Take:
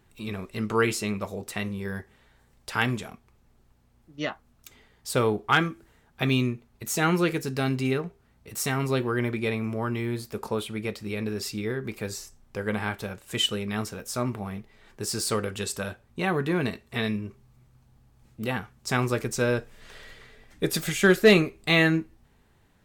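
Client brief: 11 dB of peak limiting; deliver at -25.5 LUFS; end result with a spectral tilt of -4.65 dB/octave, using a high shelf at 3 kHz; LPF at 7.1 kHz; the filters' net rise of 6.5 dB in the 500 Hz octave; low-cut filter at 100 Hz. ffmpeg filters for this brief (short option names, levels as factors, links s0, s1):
-af "highpass=100,lowpass=7100,equalizer=f=500:t=o:g=8,highshelf=f=3000:g=4.5,volume=1.06,alimiter=limit=0.282:level=0:latency=1"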